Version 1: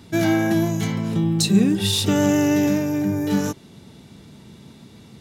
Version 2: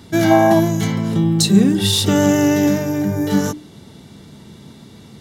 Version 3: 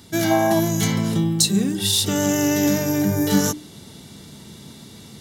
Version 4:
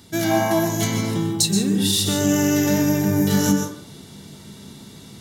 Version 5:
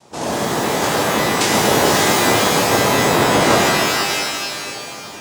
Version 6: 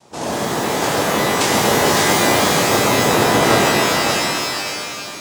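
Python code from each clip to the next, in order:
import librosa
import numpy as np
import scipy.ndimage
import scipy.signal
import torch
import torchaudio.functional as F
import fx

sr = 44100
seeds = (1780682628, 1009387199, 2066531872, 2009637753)

y1 = fx.notch(x, sr, hz=2500.0, q=8.0)
y1 = fx.spec_box(y1, sr, start_s=0.31, length_s=0.29, low_hz=540.0, high_hz=1200.0, gain_db=11)
y1 = fx.hum_notches(y1, sr, base_hz=60, count=5)
y1 = y1 * librosa.db_to_amplitude(4.5)
y2 = fx.high_shelf(y1, sr, hz=3600.0, db=10.5)
y2 = fx.rider(y2, sr, range_db=10, speed_s=0.5)
y2 = y2 * librosa.db_to_amplitude(-5.5)
y3 = fx.rev_plate(y2, sr, seeds[0], rt60_s=0.56, hf_ratio=0.5, predelay_ms=115, drr_db=3.5)
y3 = y3 * librosa.db_to_amplitude(-1.5)
y4 = fx.bass_treble(y3, sr, bass_db=14, treble_db=11)
y4 = fx.noise_vocoder(y4, sr, seeds[1], bands=2)
y4 = fx.rev_shimmer(y4, sr, seeds[2], rt60_s=2.1, semitones=12, shimmer_db=-2, drr_db=-2.5)
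y4 = y4 * librosa.db_to_amplitude(-10.0)
y5 = y4 + 10.0 ** (-5.5 / 20.0) * np.pad(y4, (int(560 * sr / 1000.0), 0))[:len(y4)]
y5 = y5 * librosa.db_to_amplitude(-1.0)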